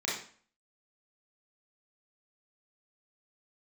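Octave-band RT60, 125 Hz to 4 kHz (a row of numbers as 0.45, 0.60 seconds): 0.45, 0.50, 0.45, 0.45, 0.45, 0.40 seconds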